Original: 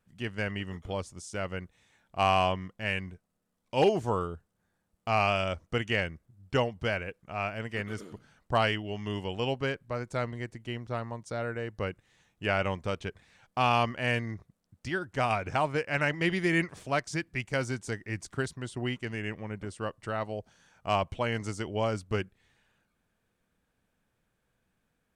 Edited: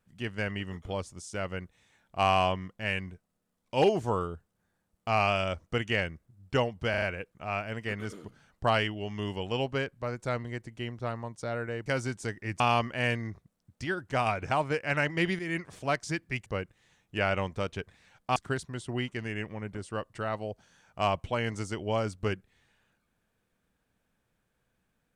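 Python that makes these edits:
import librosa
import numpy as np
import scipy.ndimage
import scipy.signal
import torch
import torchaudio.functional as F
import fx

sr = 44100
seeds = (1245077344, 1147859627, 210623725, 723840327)

y = fx.edit(x, sr, fx.stutter(start_s=6.9, slice_s=0.04, count=4),
    fx.swap(start_s=11.74, length_s=1.9, other_s=17.5, other_length_s=0.74),
    fx.fade_in_from(start_s=16.43, length_s=0.42, floor_db=-12.0), tone=tone)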